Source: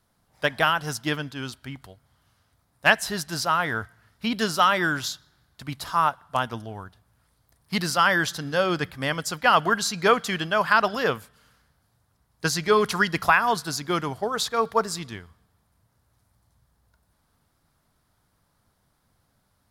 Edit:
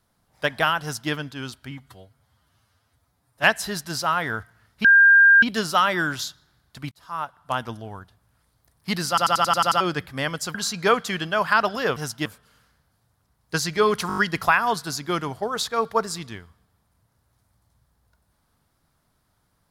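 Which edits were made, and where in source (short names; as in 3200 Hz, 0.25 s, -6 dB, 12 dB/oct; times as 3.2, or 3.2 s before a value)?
0.82–1.11 copy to 11.16
1.71–2.86 stretch 1.5×
4.27 add tone 1600 Hz -9.5 dBFS 0.58 s
5.76–6.47 fade in
7.93 stutter in place 0.09 s, 8 plays
9.39–9.74 cut
12.98 stutter 0.02 s, 6 plays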